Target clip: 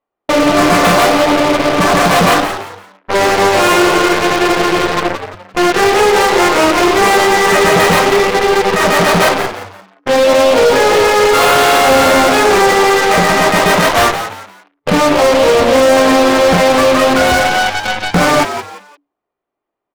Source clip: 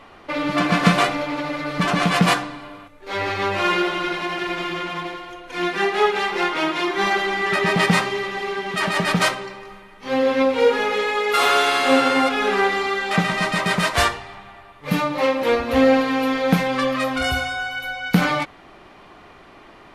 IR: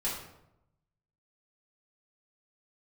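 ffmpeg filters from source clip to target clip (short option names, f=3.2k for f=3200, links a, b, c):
-filter_complex "[0:a]agate=range=-19dB:threshold=-35dB:ratio=16:detection=peak,afwtdn=0.0355,equalizer=f=520:w=0.54:g=11.5,apsyclip=13dB,asoftclip=type=hard:threshold=-3.5dB,aeval=exprs='0.668*(cos(1*acos(clip(val(0)/0.668,-1,1)))-cos(1*PI/2))+0.266*(cos(3*acos(clip(val(0)/0.668,-1,1)))-cos(3*PI/2))+0.119*(cos(4*acos(clip(val(0)/0.668,-1,1)))-cos(4*PI/2))+0.0299*(cos(6*acos(clip(val(0)/0.668,-1,1)))-cos(6*PI/2))':c=same,asplit=2[a][b];[b]asplit=3[c][d][e];[c]adelay=173,afreqshift=95,volume=-10dB[f];[d]adelay=346,afreqshift=190,volume=-20.5dB[g];[e]adelay=519,afreqshift=285,volume=-30.9dB[h];[f][g][h]amix=inputs=3:normalize=0[i];[a][i]amix=inputs=2:normalize=0,volume=-6dB"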